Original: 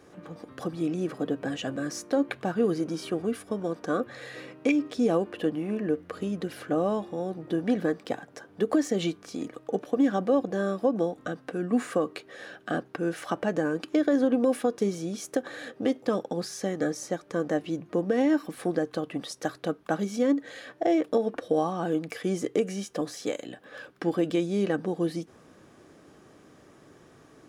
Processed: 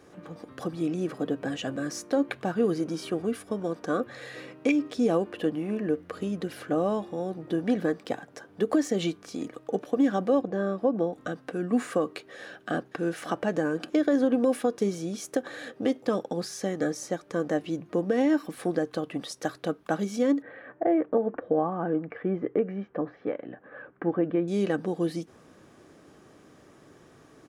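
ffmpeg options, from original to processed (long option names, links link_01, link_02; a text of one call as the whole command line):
ffmpeg -i in.wav -filter_complex "[0:a]asettb=1/sr,asplit=3[link_01][link_02][link_03];[link_01]atrim=end=10.414[link_04];[link_02]atrim=start=10.41:end=11.13,asetpts=PTS-STARTPTS,afade=type=in:duration=0.004:curve=qsin,afade=type=out:start_time=0.716:duration=0.004:curve=qsin,lowpass=frequency=1900:poles=1[link_05];[link_03]atrim=start=11.126[link_06];[link_04][link_05]acrossfade=duration=0.004:curve1=hsin:curve2=qsin[link_07];[link_07][link_06]acrossfade=duration=0.004:curve1=qsin:curve2=hsin,asplit=2[link_08][link_09];[link_09]afade=type=in:start_time=12.36:duration=0.01,afade=type=out:start_time=12.93:duration=0.01,aecho=0:1:550|1100|1650|2200:0.223872|0.0895488|0.0358195|0.0143278[link_10];[link_08][link_10]amix=inputs=2:normalize=0,asettb=1/sr,asplit=3[link_11][link_12][link_13];[link_11]atrim=end=20.424[link_14];[link_12]atrim=start=20.42:end=24.48,asetpts=PTS-STARTPTS,afade=type=in:duration=0.004:curve=qsin,afade=type=out:start_time=4.056:duration=0.004:curve=qsin,lowpass=frequency=1900:width=0.5412,lowpass=frequency=1900:width=1.3066[link_15];[link_13]atrim=start=24.476[link_16];[link_14][link_15]acrossfade=duration=0.004:curve1=hsin:curve2=qsin[link_17];[link_17][link_16]acrossfade=duration=0.004:curve1=qsin:curve2=hsin" out.wav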